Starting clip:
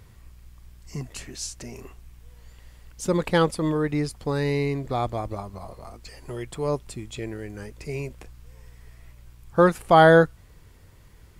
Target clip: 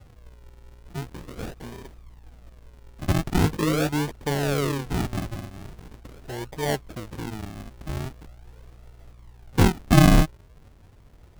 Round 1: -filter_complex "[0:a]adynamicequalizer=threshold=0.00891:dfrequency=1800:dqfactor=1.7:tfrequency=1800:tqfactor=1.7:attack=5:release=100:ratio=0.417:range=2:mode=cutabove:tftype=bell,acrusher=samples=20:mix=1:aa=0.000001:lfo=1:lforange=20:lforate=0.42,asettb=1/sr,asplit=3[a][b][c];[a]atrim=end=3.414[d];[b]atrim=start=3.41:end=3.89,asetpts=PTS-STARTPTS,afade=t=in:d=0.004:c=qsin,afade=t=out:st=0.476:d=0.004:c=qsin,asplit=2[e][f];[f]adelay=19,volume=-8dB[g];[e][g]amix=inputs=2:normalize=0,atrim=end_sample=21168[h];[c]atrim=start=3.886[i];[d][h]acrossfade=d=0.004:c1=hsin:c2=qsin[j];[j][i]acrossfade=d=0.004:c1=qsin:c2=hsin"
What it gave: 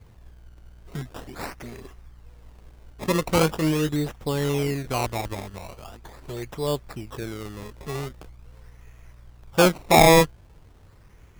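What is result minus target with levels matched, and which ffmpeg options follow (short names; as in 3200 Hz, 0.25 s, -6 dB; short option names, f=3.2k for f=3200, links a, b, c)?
decimation with a swept rate: distortion -13 dB
-filter_complex "[0:a]adynamicequalizer=threshold=0.00891:dfrequency=1800:dqfactor=1.7:tfrequency=1800:tqfactor=1.7:attack=5:release=100:ratio=0.417:range=2:mode=cutabove:tftype=bell,acrusher=samples=64:mix=1:aa=0.000001:lfo=1:lforange=64:lforate=0.42,asettb=1/sr,asplit=3[a][b][c];[a]atrim=end=3.414[d];[b]atrim=start=3.41:end=3.89,asetpts=PTS-STARTPTS,afade=t=in:d=0.004:c=qsin,afade=t=out:st=0.476:d=0.004:c=qsin,asplit=2[e][f];[f]adelay=19,volume=-8dB[g];[e][g]amix=inputs=2:normalize=0,atrim=end_sample=21168[h];[c]atrim=start=3.886[i];[d][h]acrossfade=d=0.004:c1=hsin:c2=qsin[j];[j][i]acrossfade=d=0.004:c1=qsin:c2=hsin"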